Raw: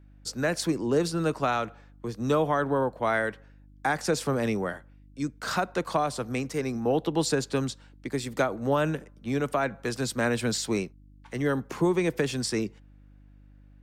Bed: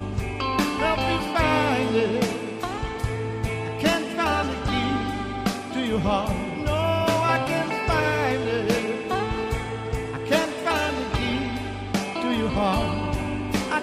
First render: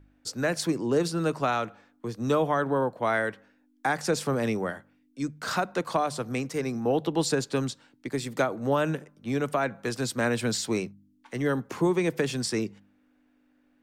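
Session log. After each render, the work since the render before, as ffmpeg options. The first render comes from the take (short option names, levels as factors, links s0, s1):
-af "bandreject=f=50:t=h:w=4,bandreject=f=100:t=h:w=4,bandreject=f=150:t=h:w=4,bandreject=f=200:t=h:w=4"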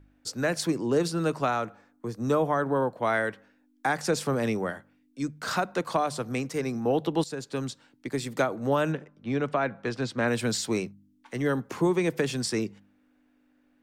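-filter_complex "[0:a]asettb=1/sr,asplit=3[s0][s1][s2];[s0]atrim=end=1.484[s3];[s1]atrim=start=1.48:end=2.75,asetpts=PTS-STARTPTS,afade=t=in:d=0.004:c=qsin,afade=t=out:st=1.266:d=0.004:c=qsin,equalizer=f=3200:w=1.3:g=-6.5[s4];[s2]atrim=start=2.746[s5];[s3][s4]acrossfade=d=0.004:c1=hsin:c2=qsin[s6];[s6][s5]acrossfade=d=0.004:c1=qsin:c2=hsin,asettb=1/sr,asplit=3[s7][s8][s9];[s7]atrim=end=8.924[s10];[s8]atrim=start=8.92:end=10.28,asetpts=PTS-STARTPTS,afade=t=in:d=0.004:c=qsin,afade=t=out:st=1.356:d=0.004:c=qsin,lowpass=4000[s11];[s9]atrim=start=10.276[s12];[s10][s11]acrossfade=d=0.004:c1=hsin:c2=qsin[s13];[s13][s12]acrossfade=d=0.004:c1=qsin:c2=hsin,asplit=2[s14][s15];[s14]atrim=end=7.24,asetpts=PTS-STARTPTS,afade=t=out:st=7.236:d=0.004:c=hsin:silence=0.188365[s16];[s15]atrim=start=7.24,asetpts=PTS-STARTPTS,afade=t=in:d=0.93:c=qsin:silence=0.188365[s17];[s16][s17]concat=n=2:v=0:a=1"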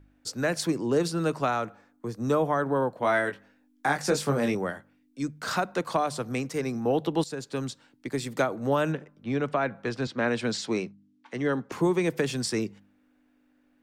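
-filter_complex "[0:a]asettb=1/sr,asplit=3[s0][s1][s2];[s0]atrim=end=2.994[s3];[s1]atrim=start=2.99:end=4.55,asetpts=PTS-STARTPTS,afade=t=in:d=0.004:c=qsin,afade=t=out:st=1.556:d=0.004:c=qsin,asplit=2[s4][s5];[s5]adelay=21,volume=0.562[s6];[s4][s6]amix=inputs=2:normalize=0,atrim=end_sample=68796[s7];[s2]atrim=start=4.546[s8];[s3][s7]acrossfade=d=0.004:c1=hsin:c2=qsin[s9];[s9][s8]acrossfade=d=0.004:c1=qsin:c2=hsin,asettb=1/sr,asplit=3[s10][s11][s12];[s10]atrim=end=10.074[s13];[s11]atrim=start=10.07:end=11.72,asetpts=PTS-STARTPTS,afade=t=in:d=0.004:c=qsin,afade=t=out:st=1.646:d=0.004:c=qsin,highpass=140,lowpass=5500[s14];[s12]atrim=start=11.716[s15];[s13][s14]acrossfade=d=0.004:c1=hsin:c2=qsin[s16];[s16][s15]acrossfade=d=0.004:c1=qsin:c2=hsin"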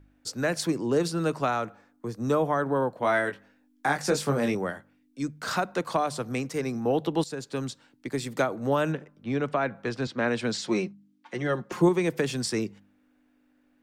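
-filter_complex "[0:a]asettb=1/sr,asplit=3[s0][s1][s2];[s0]atrim=end=10.654[s3];[s1]atrim=start=10.65:end=11.89,asetpts=PTS-STARTPTS,afade=t=in:d=0.004:c=qsin,afade=t=out:st=1.236:d=0.004:c=qsin,aecho=1:1:5.6:0.65,atrim=end_sample=54684[s4];[s2]atrim=start=11.886[s5];[s3][s4]acrossfade=d=0.004:c1=hsin:c2=qsin[s6];[s6][s5]acrossfade=d=0.004:c1=qsin:c2=hsin"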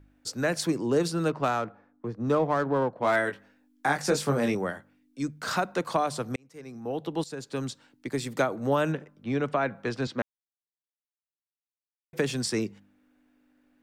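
-filter_complex "[0:a]asettb=1/sr,asplit=3[s0][s1][s2];[s0]atrim=end=1.284[s3];[s1]atrim=start=1.28:end=3.16,asetpts=PTS-STARTPTS,afade=t=in:d=0.004:c=qsin,afade=t=out:st=1.876:d=0.004:c=qsin,adynamicsmooth=sensitivity=6:basefreq=2000[s4];[s2]atrim=start=3.156[s5];[s3][s4]acrossfade=d=0.004:c1=hsin:c2=qsin[s6];[s6][s5]acrossfade=d=0.004:c1=qsin:c2=hsin,asplit=4[s7][s8][s9][s10];[s7]atrim=end=6.36,asetpts=PTS-STARTPTS,afade=t=out:st=6.356:d=0.004:c=hsin[s11];[s8]atrim=start=6.36:end=10.22,asetpts=PTS-STARTPTS,afade=t=in:d=1.31,afade=t=out:st=3.856:d=0.004:c=hsin[s12];[s9]atrim=start=10.22:end=12.13,asetpts=PTS-STARTPTS,volume=0[s13];[s10]atrim=start=12.13,asetpts=PTS-STARTPTS,afade=t=in:d=0.004:c=hsin[s14];[s11][s12][s13][s14]concat=n=4:v=0:a=1"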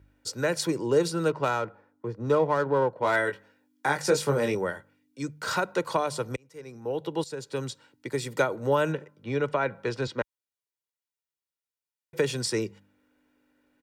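-af "highpass=53,aecho=1:1:2.1:0.48"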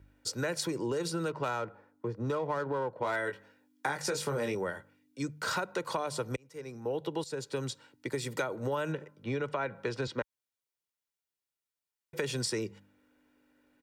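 -filter_complex "[0:a]acrossover=split=920[s0][s1];[s0]alimiter=limit=0.1:level=0:latency=1[s2];[s2][s1]amix=inputs=2:normalize=0,acompressor=threshold=0.0316:ratio=4"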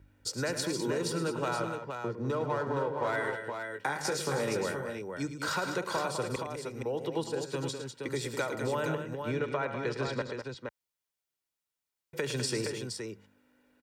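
-af "aecho=1:1:71|109|201|469:0.141|0.316|0.376|0.501"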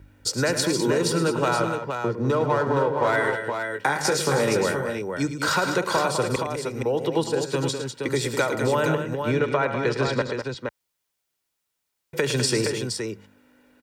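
-af "volume=2.99"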